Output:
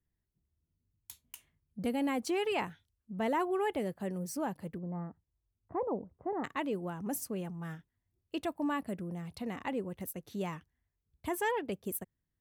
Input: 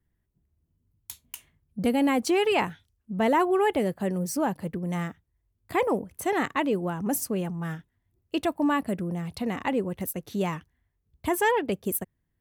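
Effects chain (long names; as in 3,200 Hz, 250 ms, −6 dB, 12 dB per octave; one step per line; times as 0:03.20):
0:04.78–0:06.44: low-pass filter 1,100 Hz 24 dB per octave
level −9 dB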